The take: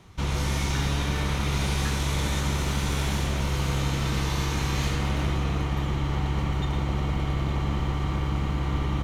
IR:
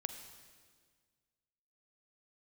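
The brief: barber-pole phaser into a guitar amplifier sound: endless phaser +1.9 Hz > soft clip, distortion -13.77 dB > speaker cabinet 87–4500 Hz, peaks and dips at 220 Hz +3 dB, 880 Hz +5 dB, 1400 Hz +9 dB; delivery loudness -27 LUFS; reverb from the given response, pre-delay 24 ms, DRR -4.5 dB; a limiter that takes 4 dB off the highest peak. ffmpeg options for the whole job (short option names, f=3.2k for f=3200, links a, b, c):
-filter_complex "[0:a]alimiter=limit=-18.5dB:level=0:latency=1,asplit=2[a][b];[1:a]atrim=start_sample=2205,adelay=24[c];[b][c]afir=irnorm=-1:irlink=0,volume=5.5dB[d];[a][d]amix=inputs=2:normalize=0,asplit=2[e][f];[f]afreqshift=1.9[g];[e][g]amix=inputs=2:normalize=1,asoftclip=threshold=-21dB,highpass=87,equalizer=f=220:t=q:w=4:g=3,equalizer=f=880:t=q:w=4:g=5,equalizer=f=1.4k:t=q:w=4:g=9,lowpass=f=4.5k:w=0.5412,lowpass=f=4.5k:w=1.3066,volume=1.5dB"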